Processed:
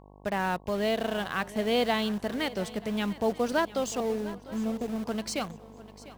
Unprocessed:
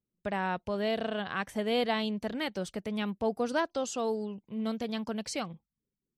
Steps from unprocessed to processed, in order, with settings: 4–5.05 Bessel low-pass 650 Hz, order 6; buzz 50 Hz, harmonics 22, -53 dBFS -3 dB/oct; in parallel at -8.5 dB: bit-crush 6-bit; on the sum: swung echo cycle 0.932 s, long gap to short 3:1, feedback 31%, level -17.5 dB

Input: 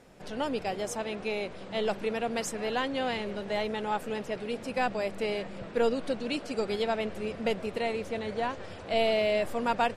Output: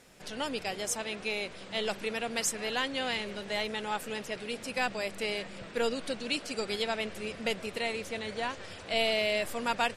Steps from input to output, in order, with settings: EQ curve 760 Hz 0 dB, 2000 Hz +7 dB, 9100 Hz +12 dB; gain -4.5 dB

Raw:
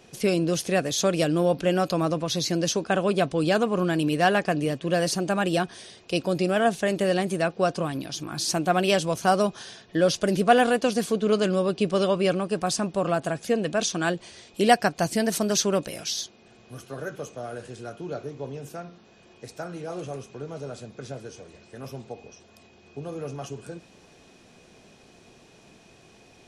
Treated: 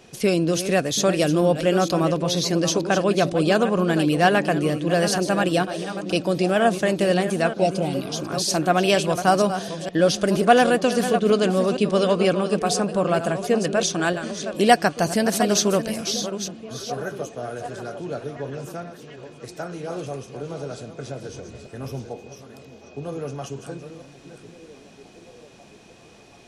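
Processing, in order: reverse delay 0.471 s, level -10 dB; 21.29–22.1 low shelf 120 Hz +11 dB; delay with a stepping band-pass 0.735 s, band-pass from 220 Hz, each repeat 0.7 oct, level -10 dB; 7.61–8.2 spectral repair 950–1900 Hz; gain +3 dB

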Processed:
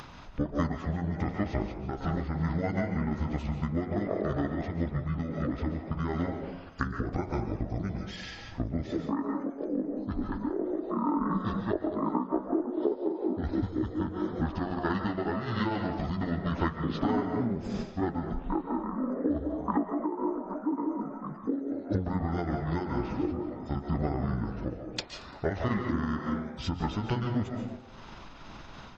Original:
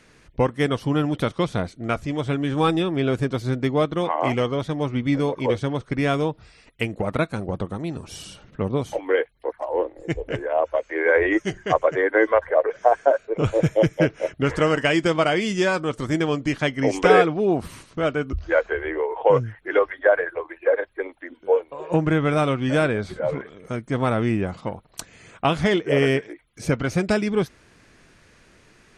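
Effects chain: delay-line pitch shifter -9.5 st; reverb RT60 0.50 s, pre-delay 0.105 s, DRR 6.5 dB; upward compressor, threshold -33 dBFS; frequency-shifting echo 0.114 s, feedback 53%, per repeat +140 Hz, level -18.5 dB; compressor 6:1, threshold -24 dBFS, peak gain reduction 12.5 dB; de-hum 90.25 Hz, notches 27; noise-modulated level, depth 65%; gain +1.5 dB

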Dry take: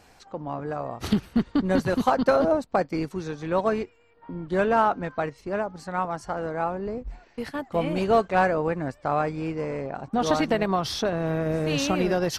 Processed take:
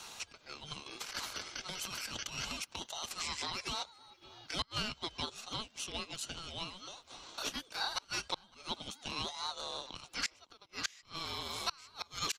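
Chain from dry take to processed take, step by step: inverse Chebyshev high-pass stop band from 430 Hz, stop band 80 dB; high shelf 4800 Hz -11 dB; notch 3300 Hz, Q 20; 0.86–3.6 negative-ratio compressor -55 dBFS, ratio -1; ring modulator 1500 Hz; flipped gate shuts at -34 dBFS, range -32 dB; outdoor echo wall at 96 m, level -26 dB; three-band squash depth 40%; gain +16 dB

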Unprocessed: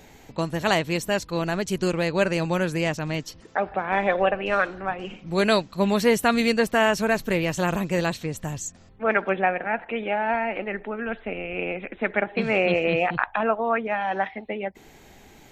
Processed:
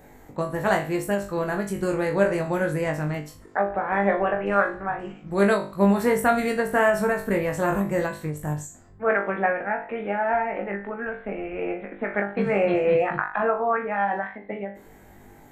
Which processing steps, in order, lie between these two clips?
band shelf 4000 Hz -12 dB; resonator 50 Hz, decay 0.3 s, harmonics all, mix 100%; ending taper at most 130 dB/s; gain +7.5 dB

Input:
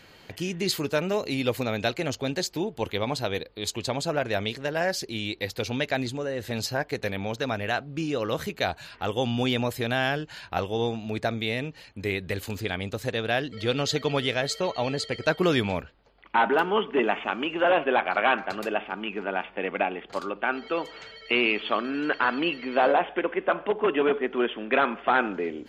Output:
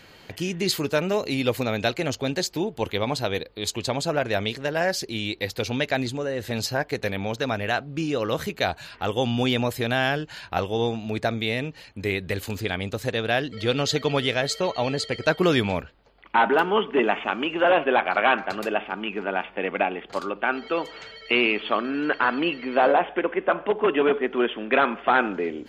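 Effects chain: 21.46–23.68 high shelf 5800 Hz -10 dB; gain +2.5 dB

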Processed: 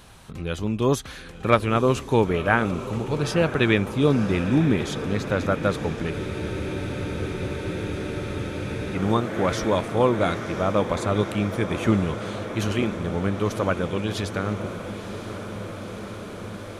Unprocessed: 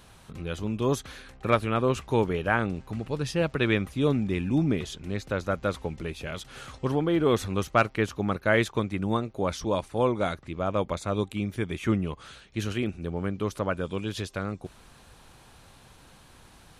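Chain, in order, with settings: diffused feedback echo 0.984 s, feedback 79%, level -12 dB; spectral freeze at 6.14, 2.80 s; gain +4.5 dB

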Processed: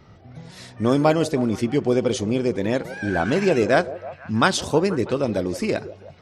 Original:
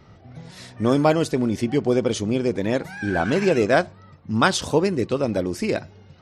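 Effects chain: delay with a stepping band-pass 0.161 s, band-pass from 450 Hz, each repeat 0.7 oct, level -12 dB

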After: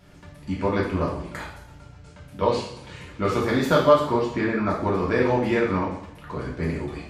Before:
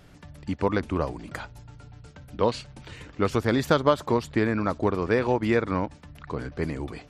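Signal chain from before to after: 3.99–4.67 air absorption 76 m; two-slope reverb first 0.68 s, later 2.5 s, from -26 dB, DRR -5.5 dB; gain -4 dB

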